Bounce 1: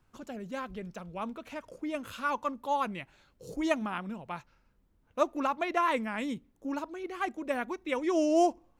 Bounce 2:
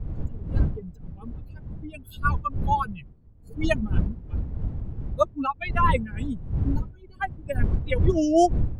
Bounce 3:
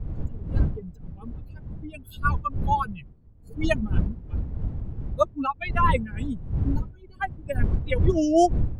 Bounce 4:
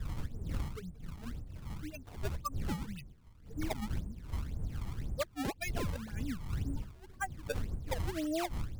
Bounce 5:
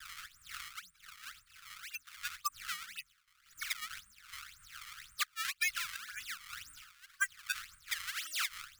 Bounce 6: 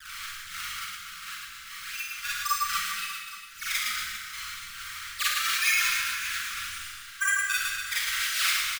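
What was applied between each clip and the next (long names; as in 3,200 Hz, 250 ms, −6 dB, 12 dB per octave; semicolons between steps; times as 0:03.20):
spectral dynamics exaggerated over time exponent 3; wind on the microphone 89 Hz −36 dBFS; level +9 dB
no processing that can be heard
downward compressor 12 to 1, threshold −26 dBFS, peak gain reduction 13.5 dB; sample-and-hold swept by an LFO 24×, swing 160% 1.9 Hz; level −5.5 dB
noise gate with hold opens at −51 dBFS; elliptic high-pass filter 1,300 Hz, stop band 40 dB; level +8.5 dB
on a send: reverse bouncing-ball delay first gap 110 ms, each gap 1.2×, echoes 5; on the sum: four-comb reverb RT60 0.56 s, combs from 33 ms, DRR −6.5 dB; level +2.5 dB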